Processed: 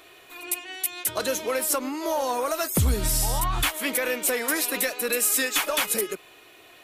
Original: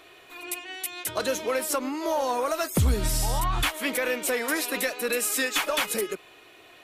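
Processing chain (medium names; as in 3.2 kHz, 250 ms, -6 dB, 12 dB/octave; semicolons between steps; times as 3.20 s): treble shelf 8.1 kHz +8.5 dB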